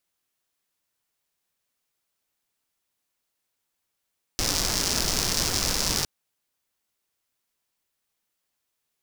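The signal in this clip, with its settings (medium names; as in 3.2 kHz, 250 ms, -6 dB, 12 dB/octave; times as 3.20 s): rain from filtered ticks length 1.66 s, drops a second 180, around 5.3 kHz, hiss -1 dB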